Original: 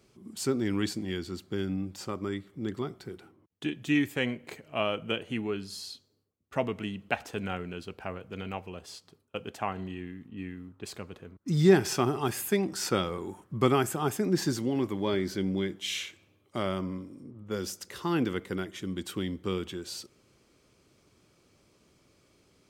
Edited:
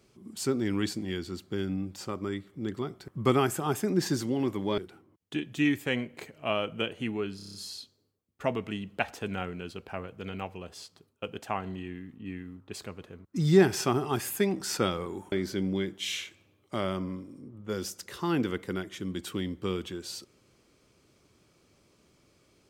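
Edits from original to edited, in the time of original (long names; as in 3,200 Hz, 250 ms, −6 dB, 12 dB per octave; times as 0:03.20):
0:05.66: stutter 0.03 s, 7 plays
0:13.44–0:15.14: move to 0:03.08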